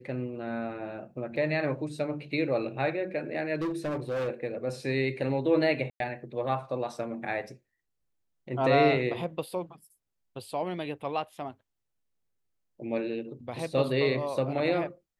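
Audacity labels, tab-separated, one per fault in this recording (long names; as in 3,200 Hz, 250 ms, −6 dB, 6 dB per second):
1.360000	1.360000	drop-out 2.5 ms
3.550000	4.290000	clipping −27.5 dBFS
5.900000	6.000000	drop-out 102 ms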